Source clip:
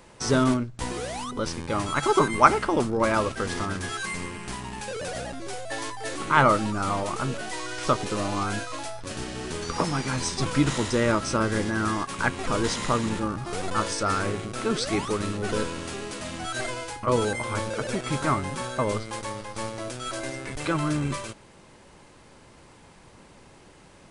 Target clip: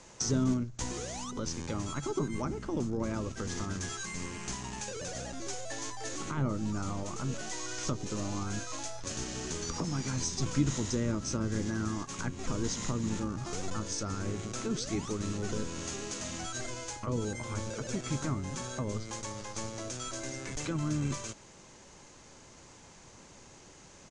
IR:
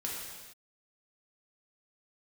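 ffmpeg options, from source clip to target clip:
-filter_complex "[0:a]asplit=2[s0][s1];[s1]asetrate=33038,aresample=44100,atempo=1.33484,volume=0.158[s2];[s0][s2]amix=inputs=2:normalize=0,acrossover=split=330[s3][s4];[s4]acompressor=threshold=0.0158:ratio=8[s5];[s3][s5]amix=inputs=2:normalize=0,lowpass=f=6600:t=q:w=5.1,volume=0.631"

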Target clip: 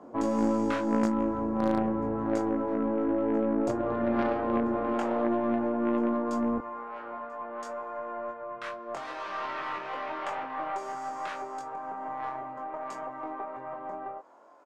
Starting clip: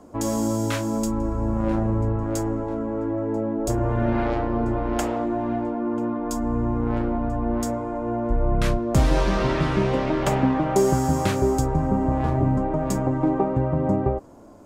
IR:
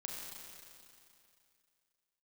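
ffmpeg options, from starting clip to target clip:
-filter_complex "[0:a]bandreject=f=50:t=h:w=6,bandreject=f=100:t=h:w=6,bandreject=f=150:t=h:w=6,bandreject=f=200:t=h:w=6,bandreject=f=250:t=h:w=6,bandreject=f=300:t=h:w=6,alimiter=limit=0.15:level=0:latency=1:release=228,asetnsamples=n=441:p=0,asendcmd='6.58 highpass f 900',highpass=170,crystalizer=i=9:c=0,lowpass=1100,asplit=2[s0][s1];[s1]adelay=22,volume=0.668[s2];[s0][s2]amix=inputs=2:normalize=0,aeval=exprs='0.2*(cos(1*acos(clip(val(0)/0.2,-1,1)))-cos(1*PI/2))+0.02*(cos(2*acos(clip(val(0)/0.2,-1,1)))-cos(2*PI/2))+0.0398*(cos(3*acos(clip(val(0)/0.2,-1,1)))-cos(3*PI/2))+0.0141*(cos(4*acos(clip(val(0)/0.2,-1,1)))-cos(4*PI/2))+0.0141*(cos(5*acos(clip(val(0)/0.2,-1,1)))-cos(5*PI/2))':c=same"

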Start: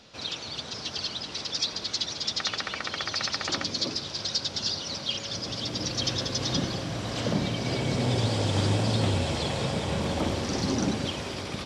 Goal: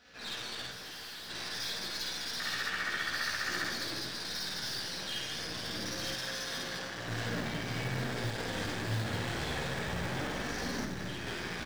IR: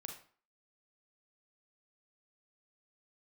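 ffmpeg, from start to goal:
-filter_complex "[0:a]asplit=2[s0][s1];[1:a]atrim=start_sample=2205,adelay=17[s2];[s1][s2]afir=irnorm=-1:irlink=0,volume=1.68[s3];[s0][s3]amix=inputs=2:normalize=0,asoftclip=type=tanh:threshold=0.0631,flanger=delay=4:depth=9.1:regen=-42:speed=0.47:shape=sinusoidal,aecho=1:1:52.48|154.5|201.2:1|0.282|0.562,asettb=1/sr,asplit=3[s4][s5][s6];[s4]atrim=end=0.714[s7];[s5]atrim=start=0.71:end=1.3,asetpts=PTS-STARTPTS,afade=t=in:d=0.004:c=qsin,afade=t=out:st=0.586:d=0.004:c=qsin,asoftclip=type=hard:threshold=0.0141[s8];[s6]atrim=start=1.296[s9];[s7][s8]acrossfade=d=0.004:c1=hsin:c2=qsin[s10];[s10][s9]acrossfade=d=0.004:c1=qsin:c2=hsin,aeval=exprs='0.141*(cos(1*acos(clip(val(0)/0.141,-1,1)))-cos(1*PI/2))+0.0112*(cos(8*acos(clip(val(0)/0.141,-1,1)))-cos(8*PI/2))':c=same,asettb=1/sr,asplit=3[s11][s12][s13];[s11]atrim=end=6.144[s14];[s12]atrim=start=6.14:end=7.08,asetpts=PTS-STARTPTS,afade=t=in:d=0.004:c=qsin,afade=t=out:st=0.936:d=0.004:c=qsin,lowshelf=f=340:g=-10[s15];[s13]atrim=start=7.076[s16];[s14][s15]acrossfade=d=0.004:c1=hsin:c2=qsin[s17];[s17][s16]acrossfade=d=0.004:c1=qsin:c2=hsin,acrusher=bits=5:mode=log:mix=0:aa=0.000001,equalizer=f=1700:t=o:w=0.56:g=12.5,asettb=1/sr,asplit=3[s18][s19][s20];[s18]atrim=end=10.844[s21];[s19]atrim=start=10.84:end=11.27,asetpts=PTS-STARTPTS,afade=t=in:d=0.004:c=qsin,afade=t=out:st=0.426:d=0.004:c=qsin,acrossover=split=150[s22][s23];[s23]acompressor=threshold=0.0355:ratio=6[s24];[s22][s24]amix=inputs=2:normalize=0[s25];[s20]atrim=start=11.266[s26];[s21][s25]acrossfade=d=0.004:c1=hsin:c2=qsin[s27];[s27][s26]acrossfade=d=0.004:c1=qsin:c2=hsin,volume=0.376"

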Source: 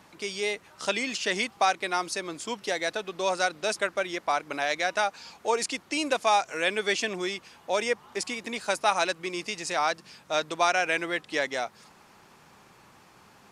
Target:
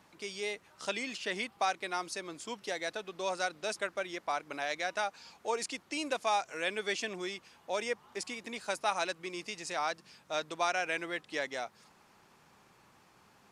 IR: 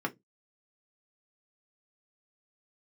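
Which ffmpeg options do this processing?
-filter_complex "[0:a]asettb=1/sr,asplit=3[s0][s1][s2];[s0]atrim=end=1.134[s3];[s1]atrim=start=1.13:end=1.59,asetpts=PTS-STARTPTS,afade=t=in:d=0.004:c=qsin,afade=t=out:st=0.456:d=0.004:c=qsin,equalizer=f=6400:t=o:w=0.77:g=-6[s4];[s2]atrim=start=1.586[s5];[s3][s4]acrossfade=d=0.004:c1=hsin:c2=qsin[s6];[s6][s5]acrossfade=d=0.004:c1=qsin:c2=hsin,volume=0.422"

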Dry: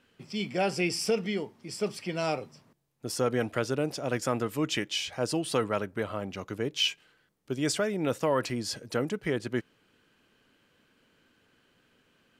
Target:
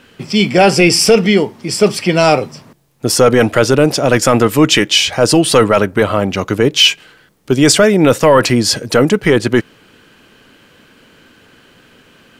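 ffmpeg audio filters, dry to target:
-af "apsyclip=12.6,volume=0.841"

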